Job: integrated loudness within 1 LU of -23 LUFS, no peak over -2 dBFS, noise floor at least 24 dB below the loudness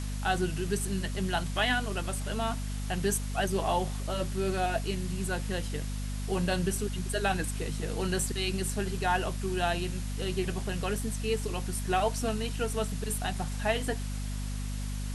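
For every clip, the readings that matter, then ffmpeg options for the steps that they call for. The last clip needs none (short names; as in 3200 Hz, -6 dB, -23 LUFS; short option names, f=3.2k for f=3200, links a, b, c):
hum 50 Hz; harmonics up to 250 Hz; hum level -32 dBFS; noise floor -34 dBFS; noise floor target -56 dBFS; loudness -31.5 LUFS; peak -14.5 dBFS; loudness target -23.0 LUFS
-> -af "bandreject=f=50:t=h:w=4,bandreject=f=100:t=h:w=4,bandreject=f=150:t=h:w=4,bandreject=f=200:t=h:w=4,bandreject=f=250:t=h:w=4"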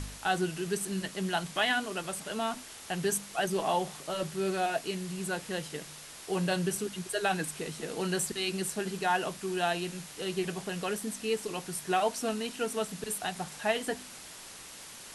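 hum none; noise floor -47 dBFS; noise floor target -57 dBFS
-> -af "afftdn=nr=10:nf=-47"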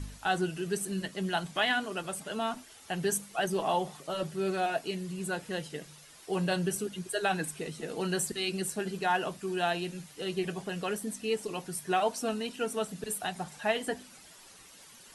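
noise floor -54 dBFS; noise floor target -57 dBFS
-> -af "afftdn=nr=6:nf=-54"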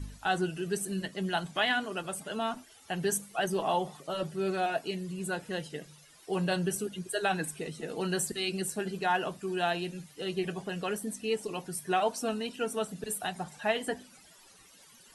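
noise floor -57 dBFS; loudness -32.5 LUFS; peak -16.0 dBFS; loudness target -23.0 LUFS
-> -af "volume=9.5dB"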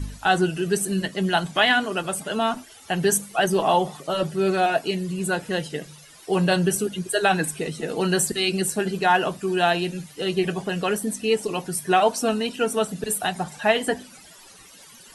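loudness -23.0 LUFS; peak -6.5 dBFS; noise floor -48 dBFS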